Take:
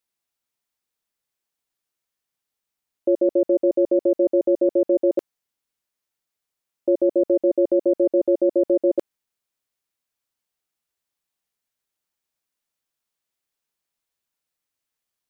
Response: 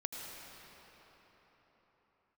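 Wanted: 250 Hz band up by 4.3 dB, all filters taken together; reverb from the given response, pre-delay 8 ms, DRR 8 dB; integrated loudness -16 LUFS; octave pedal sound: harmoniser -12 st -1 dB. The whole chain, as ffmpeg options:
-filter_complex "[0:a]equalizer=f=250:t=o:g=8,asplit=2[a][b];[1:a]atrim=start_sample=2205,adelay=8[c];[b][c]afir=irnorm=-1:irlink=0,volume=-8.5dB[d];[a][d]amix=inputs=2:normalize=0,asplit=2[e][f];[f]asetrate=22050,aresample=44100,atempo=2,volume=-1dB[g];[e][g]amix=inputs=2:normalize=0,volume=-1.5dB"

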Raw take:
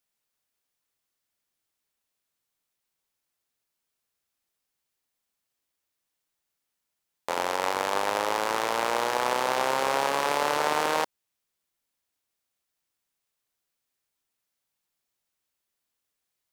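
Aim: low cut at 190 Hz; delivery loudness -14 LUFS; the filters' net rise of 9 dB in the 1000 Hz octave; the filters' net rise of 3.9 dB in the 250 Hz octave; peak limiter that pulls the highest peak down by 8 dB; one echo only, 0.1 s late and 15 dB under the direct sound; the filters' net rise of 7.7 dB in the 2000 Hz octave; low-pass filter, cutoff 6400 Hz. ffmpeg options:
-af "highpass=190,lowpass=6.4k,equalizer=f=250:t=o:g=5.5,equalizer=f=1k:t=o:g=9,equalizer=f=2k:t=o:g=6.5,alimiter=limit=-11dB:level=0:latency=1,aecho=1:1:100:0.178,volume=9.5dB"

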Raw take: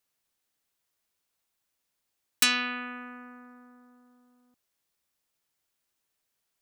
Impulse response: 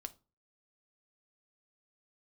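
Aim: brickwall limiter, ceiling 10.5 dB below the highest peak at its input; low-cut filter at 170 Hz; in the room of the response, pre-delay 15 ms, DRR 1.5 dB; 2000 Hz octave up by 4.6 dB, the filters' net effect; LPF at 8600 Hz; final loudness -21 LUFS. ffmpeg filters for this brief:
-filter_complex "[0:a]highpass=170,lowpass=8.6k,equalizer=f=2k:t=o:g=6,alimiter=limit=-20dB:level=0:latency=1,asplit=2[a][b];[1:a]atrim=start_sample=2205,adelay=15[c];[b][c]afir=irnorm=-1:irlink=0,volume=2.5dB[d];[a][d]amix=inputs=2:normalize=0,volume=6.5dB"

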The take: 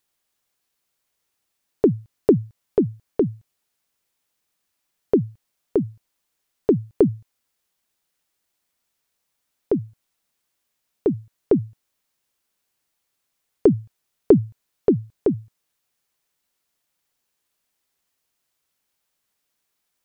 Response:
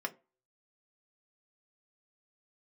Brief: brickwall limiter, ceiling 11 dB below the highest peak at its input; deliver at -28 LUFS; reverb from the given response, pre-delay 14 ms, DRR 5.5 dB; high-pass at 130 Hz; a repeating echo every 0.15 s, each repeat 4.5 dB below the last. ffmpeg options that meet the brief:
-filter_complex "[0:a]highpass=130,alimiter=limit=-13dB:level=0:latency=1,aecho=1:1:150|300|450|600|750|900|1050|1200|1350:0.596|0.357|0.214|0.129|0.0772|0.0463|0.0278|0.0167|0.01,asplit=2[a][b];[1:a]atrim=start_sample=2205,adelay=14[c];[b][c]afir=irnorm=-1:irlink=0,volume=-8.5dB[d];[a][d]amix=inputs=2:normalize=0,volume=-2.5dB"

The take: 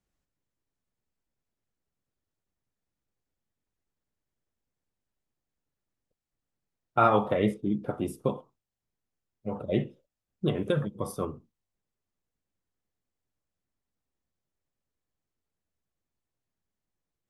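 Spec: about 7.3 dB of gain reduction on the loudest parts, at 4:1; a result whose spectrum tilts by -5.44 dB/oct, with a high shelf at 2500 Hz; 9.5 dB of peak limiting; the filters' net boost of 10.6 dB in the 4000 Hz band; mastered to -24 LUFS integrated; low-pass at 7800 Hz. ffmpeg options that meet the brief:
-af "lowpass=7.8k,highshelf=f=2.5k:g=6,equalizer=f=4k:t=o:g=8.5,acompressor=threshold=-25dB:ratio=4,volume=11.5dB,alimiter=limit=-10.5dB:level=0:latency=1"

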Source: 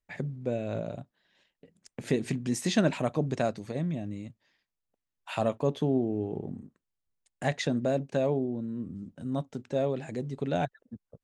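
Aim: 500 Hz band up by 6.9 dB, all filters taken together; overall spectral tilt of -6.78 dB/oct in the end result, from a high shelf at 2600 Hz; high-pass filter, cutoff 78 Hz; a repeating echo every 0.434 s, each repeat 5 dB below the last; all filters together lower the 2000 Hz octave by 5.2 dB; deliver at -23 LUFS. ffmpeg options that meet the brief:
-af "highpass=78,equalizer=f=500:t=o:g=9,equalizer=f=2k:t=o:g=-5,highshelf=f=2.6k:g=-5.5,aecho=1:1:434|868|1302|1736|2170|2604|3038:0.562|0.315|0.176|0.0988|0.0553|0.031|0.0173,volume=3dB"

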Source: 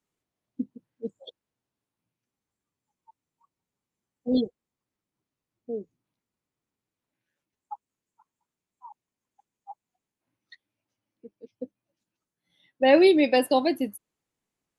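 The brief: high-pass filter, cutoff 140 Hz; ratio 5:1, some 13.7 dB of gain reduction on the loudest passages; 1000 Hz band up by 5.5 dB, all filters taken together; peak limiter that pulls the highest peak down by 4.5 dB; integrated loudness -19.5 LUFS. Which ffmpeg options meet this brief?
-af "highpass=140,equalizer=f=1k:t=o:g=8,acompressor=threshold=-26dB:ratio=5,volume=16.5dB,alimiter=limit=-4.5dB:level=0:latency=1"

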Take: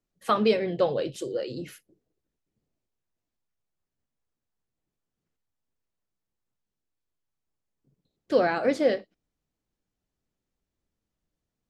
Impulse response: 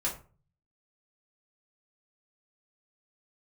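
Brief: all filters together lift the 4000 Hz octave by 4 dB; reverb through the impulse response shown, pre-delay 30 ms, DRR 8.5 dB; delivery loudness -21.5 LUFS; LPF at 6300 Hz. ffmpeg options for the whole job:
-filter_complex "[0:a]lowpass=6.3k,equalizer=f=4k:t=o:g=5.5,asplit=2[a][b];[1:a]atrim=start_sample=2205,adelay=30[c];[b][c]afir=irnorm=-1:irlink=0,volume=-14dB[d];[a][d]amix=inputs=2:normalize=0,volume=4dB"

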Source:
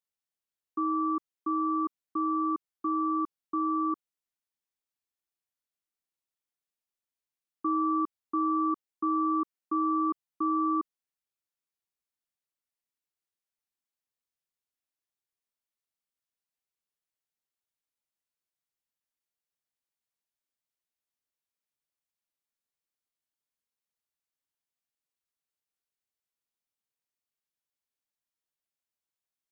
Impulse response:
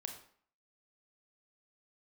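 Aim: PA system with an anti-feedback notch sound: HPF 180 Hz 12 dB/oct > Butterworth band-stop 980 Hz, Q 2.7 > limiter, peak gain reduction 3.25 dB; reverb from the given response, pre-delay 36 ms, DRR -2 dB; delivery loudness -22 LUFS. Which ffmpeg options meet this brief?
-filter_complex "[0:a]asplit=2[a][b];[1:a]atrim=start_sample=2205,adelay=36[c];[b][c]afir=irnorm=-1:irlink=0,volume=4.5dB[d];[a][d]amix=inputs=2:normalize=0,highpass=180,asuperstop=centerf=980:order=8:qfactor=2.7,volume=12.5dB,alimiter=limit=-13.5dB:level=0:latency=1"

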